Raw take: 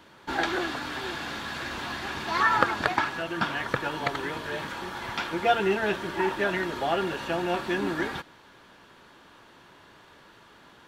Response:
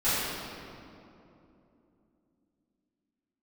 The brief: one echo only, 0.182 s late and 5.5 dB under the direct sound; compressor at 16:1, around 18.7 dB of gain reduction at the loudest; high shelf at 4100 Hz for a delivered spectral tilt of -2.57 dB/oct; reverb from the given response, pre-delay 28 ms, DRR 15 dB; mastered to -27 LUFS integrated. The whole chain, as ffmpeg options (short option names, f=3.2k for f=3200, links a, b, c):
-filter_complex "[0:a]highshelf=f=4.1k:g=-5,acompressor=threshold=-36dB:ratio=16,aecho=1:1:182:0.531,asplit=2[a][b];[1:a]atrim=start_sample=2205,adelay=28[c];[b][c]afir=irnorm=-1:irlink=0,volume=-29dB[d];[a][d]amix=inputs=2:normalize=0,volume=12dB"